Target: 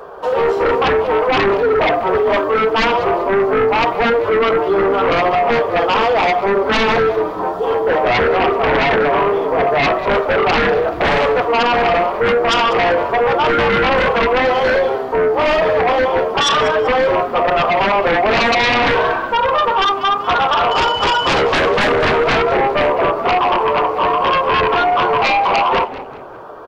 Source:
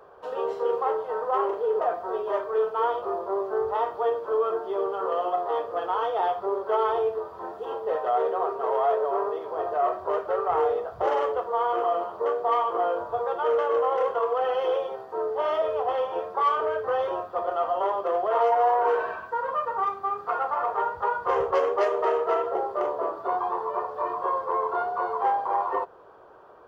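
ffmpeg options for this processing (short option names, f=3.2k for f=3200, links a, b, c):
-filter_complex "[0:a]asettb=1/sr,asplit=3[a][b][c];[a]atrim=end=20.714[d];[b]atrim=start=20.71:end=21.42,asetpts=PTS-STARTPTS,afade=t=in:d=0.004:c=qsin,afade=t=out:st=0.706:d=0.004:c=qsin,aeval=exprs='val(0)+0.0141*sin(2*PI*3000*n/s)':c=same[e];[c]atrim=start=21.416[f];[d][e]acrossfade=d=0.004:c1=hsin:c2=qsin[g];[g][f]acrossfade=d=0.004:c1=qsin:c2=hsin,flanger=delay=4.1:depth=3.7:regen=-45:speed=0.73:shape=triangular,aeval=exprs='0.178*sin(PI/2*4.47*val(0)/0.178)':c=same,asplit=2[h][i];[i]asplit=3[j][k][l];[j]adelay=193,afreqshift=-130,volume=-15dB[m];[k]adelay=386,afreqshift=-260,volume=-23.6dB[n];[l]adelay=579,afreqshift=-390,volume=-32.3dB[o];[m][n][o]amix=inputs=3:normalize=0[p];[h][p]amix=inputs=2:normalize=0,volume=4dB"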